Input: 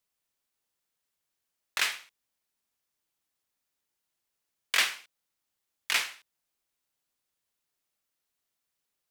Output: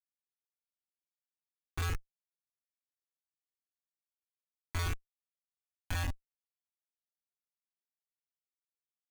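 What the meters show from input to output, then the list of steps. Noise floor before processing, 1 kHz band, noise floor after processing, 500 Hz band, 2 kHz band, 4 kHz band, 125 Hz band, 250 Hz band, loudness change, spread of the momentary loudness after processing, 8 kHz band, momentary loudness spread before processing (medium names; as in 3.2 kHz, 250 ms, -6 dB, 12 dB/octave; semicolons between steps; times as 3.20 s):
-84 dBFS, -5.5 dB, under -85 dBFS, -1.0 dB, -13.5 dB, -16.0 dB, no reading, +9.5 dB, -9.5 dB, 9 LU, -12.5 dB, 17 LU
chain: level-controlled noise filter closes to 460 Hz, open at -29.5 dBFS; in parallel at +2 dB: peak limiter -19.5 dBFS, peak gain reduction 10 dB; on the sum: waveshaping leveller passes 2; on a send: echo that smears into a reverb 1153 ms, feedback 59%, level -11 dB; on the sum: vocoder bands 8, square 86.8 Hz; Schmitt trigger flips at -16.5 dBFS; Shepard-style flanger rising 0.64 Hz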